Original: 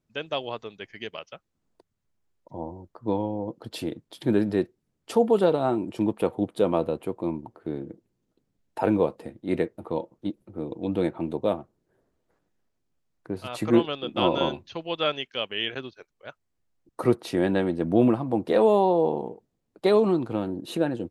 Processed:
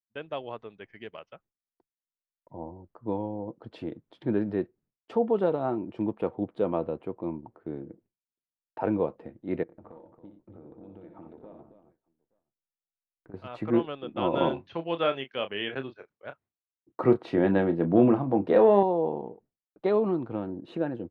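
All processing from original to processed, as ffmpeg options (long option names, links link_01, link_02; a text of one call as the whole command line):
ffmpeg -i in.wav -filter_complex "[0:a]asettb=1/sr,asplit=3[link_01][link_02][link_03];[link_01]atrim=end=9.634[link_04];[link_02]atrim=start=9.63:end=13.34,asetpts=PTS-STARTPTS,afade=type=in:duration=0.004:curve=qsin,afade=type=out:start_time=3.706:duration=0.004:curve=qsin,lowpass=frequency=2400:poles=1,acompressor=threshold=-39dB:ratio=16:attack=3.2:release=140:knee=1:detection=peak,aecho=1:1:61|90|274|872:0.422|0.299|0.335|0.133,atrim=end_sample=163611[link_05];[link_03]atrim=start=13.336[link_06];[link_04][link_05]acrossfade=duration=0.004:curve1=hsin:curve2=qsin[link_07];[link_07][link_06]acrossfade=duration=0.004:curve1=qsin:curve2=hsin,asettb=1/sr,asplit=3[link_08][link_09][link_10];[link_08]atrim=end=14.334[link_11];[link_09]atrim=start=14.33:end=18.83,asetpts=PTS-STARTPTS,afade=type=in:duration=0.004:curve=qsin,afade=type=out:start_time=4.496:duration=0.004:curve=qsin,acontrast=26,highpass=83,asplit=2[link_12][link_13];[link_13]adelay=30,volume=-10dB[link_14];[link_12][link_14]amix=inputs=2:normalize=0,atrim=end_sample=198450[link_15];[link_10]atrim=start=18.826[link_16];[link_11][link_15]acrossfade=duration=0.004:curve1=hsin:curve2=qsin[link_17];[link_17][link_16]acrossfade=duration=0.004:curve1=qsin:curve2=hsin,lowpass=2100,agate=range=-33dB:threshold=-51dB:ratio=3:detection=peak,volume=-4.5dB" out.wav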